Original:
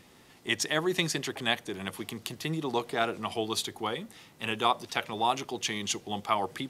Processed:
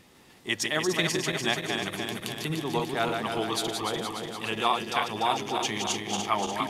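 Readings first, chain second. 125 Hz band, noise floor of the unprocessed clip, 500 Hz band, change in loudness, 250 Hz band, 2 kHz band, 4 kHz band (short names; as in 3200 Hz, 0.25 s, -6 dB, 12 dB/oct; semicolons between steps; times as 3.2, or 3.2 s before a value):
+3.0 dB, -57 dBFS, +2.5 dB, +2.5 dB, +2.5 dB, +3.0 dB, +2.5 dB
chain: regenerating reverse delay 0.147 s, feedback 77%, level -4.5 dB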